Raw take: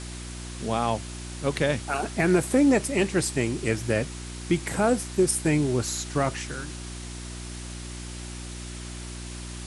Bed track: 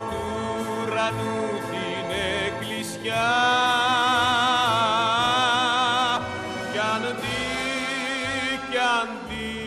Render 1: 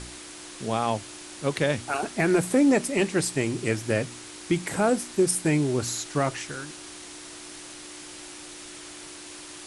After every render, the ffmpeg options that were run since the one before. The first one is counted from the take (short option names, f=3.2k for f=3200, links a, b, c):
-af "bandreject=f=60:t=h:w=4,bandreject=f=120:t=h:w=4,bandreject=f=180:t=h:w=4,bandreject=f=240:t=h:w=4"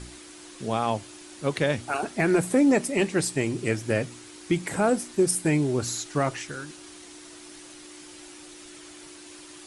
-af "afftdn=nr=6:nf=-43"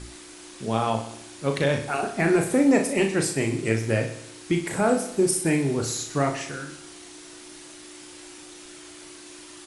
-filter_complex "[0:a]asplit=2[a][b];[b]adelay=36,volume=-6dB[c];[a][c]amix=inputs=2:normalize=0,aecho=1:1:62|124|186|248|310|372|434:0.282|0.163|0.0948|0.055|0.0319|0.0185|0.0107"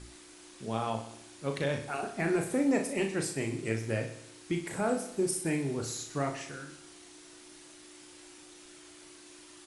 -af "volume=-8.5dB"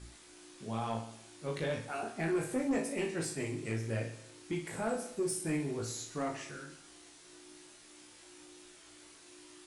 -af "flanger=delay=17.5:depth=2.1:speed=1,asoftclip=type=tanh:threshold=-24.5dB"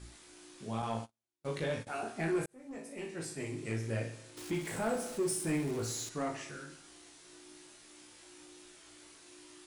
-filter_complex "[0:a]asettb=1/sr,asplit=3[a][b][c];[a]atrim=end=0.824[d];[b]atrim=start=0.82:end=1.87,asetpts=PTS-STARTPTS,afade=t=in:d=0.004:c=qsin,afade=t=out:st=1.046:d=0.004:c=qsin,agate=range=-41dB:threshold=-44dB:ratio=16:release=100:detection=peak[e];[c]atrim=start=1.866[f];[d][e]acrossfade=d=0.004:c1=hsin:c2=qsin[g];[g][f]acrossfade=d=0.004:c1=qsin:c2=hsin,asettb=1/sr,asplit=3[h][i][j];[h]atrim=end=4.374[k];[i]atrim=start=4.37:end=6.09,asetpts=PTS-STARTPTS,afade=t=in:d=0.004:c=qsin,afade=t=out:st=1.716:d=0.004:c=qsin,aeval=exprs='val(0)+0.5*0.00708*sgn(val(0))':c=same[l];[j]atrim=start=6.086[m];[k][l]acrossfade=d=0.004:c1=hsin:c2=qsin[n];[n][m]acrossfade=d=0.004:c1=qsin:c2=hsin,asplit=2[o][p];[o]atrim=end=2.46,asetpts=PTS-STARTPTS,afade=t=out:st=2.456:d=0.004:c=hsin[q];[p]atrim=start=2.46,asetpts=PTS-STARTPTS,afade=t=in:d=1.32[r];[q][r]concat=n=2:v=0:a=1"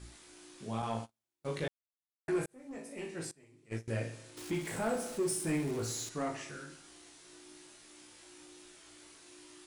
-filter_complex "[0:a]asettb=1/sr,asplit=3[a][b][c];[a]atrim=end=3.314[d];[b]atrim=start=3.31:end=3.88,asetpts=PTS-STARTPTS,afade=t=in:d=0.004:c=qsin,afade=t=out:st=0.566:d=0.004:c=qsin,agate=range=-22dB:threshold=-35dB:ratio=16:release=100:detection=peak[e];[c]atrim=start=3.876[f];[d][e]acrossfade=d=0.004:c1=hsin:c2=qsin[g];[g][f]acrossfade=d=0.004:c1=qsin:c2=hsin,asplit=3[h][i][j];[h]atrim=end=1.68,asetpts=PTS-STARTPTS,afade=t=out:st=1.676:d=0.004:c=hsin[k];[i]atrim=start=1.68:end=2.28,asetpts=PTS-STARTPTS,volume=0[l];[j]atrim=start=2.28,asetpts=PTS-STARTPTS,afade=t=in:d=0.004:c=hsin[m];[k][l][m]concat=n=3:v=0:a=1"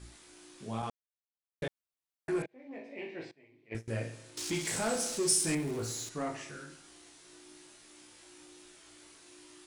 -filter_complex "[0:a]asettb=1/sr,asplit=3[a][b][c];[a]atrim=end=2.424[d];[b]atrim=start=2.42:end=3.75,asetpts=PTS-STARTPTS,afade=t=in:d=0.004:c=qsin,afade=t=out:st=1.326:d=0.004:c=qsin,highpass=140,equalizer=f=170:t=q:w=4:g=-9,equalizer=f=650:t=q:w=4:g=4,equalizer=f=1.3k:t=q:w=4:g=-10,equalizer=f=2.2k:t=q:w=4:g=7,lowpass=f=3.9k:w=0.5412,lowpass=f=3.9k:w=1.3066[e];[c]atrim=start=3.746[f];[d][e]acrossfade=d=0.004:c1=hsin:c2=qsin[g];[g][f]acrossfade=d=0.004:c1=qsin:c2=hsin,asettb=1/sr,asplit=3[h][i][j];[h]atrim=end=4.374[k];[i]atrim=start=4.37:end=5.55,asetpts=PTS-STARTPTS,afade=t=in:d=0.004:c=qsin,afade=t=out:st=1.176:d=0.004:c=qsin,equalizer=f=5.8k:w=0.6:g=13.5[l];[j]atrim=start=5.546[m];[k][l]acrossfade=d=0.004:c1=hsin:c2=qsin[n];[n][m]acrossfade=d=0.004:c1=qsin:c2=hsin,asplit=3[o][p][q];[o]atrim=end=0.9,asetpts=PTS-STARTPTS,afade=t=out:st=0.896:d=0.004:c=hsin[r];[p]atrim=start=0.9:end=1.62,asetpts=PTS-STARTPTS,volume=0[s];[q]atrim=start=1.62,asetpts=PTS-STARTPTS,afade=t=in:d=0.004:c=hsin[t];[r][s][t]concat=n=3:v=0:a=1"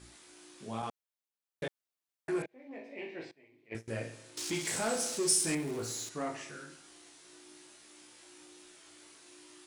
-af "lowshelf=f=100:g=-11.5"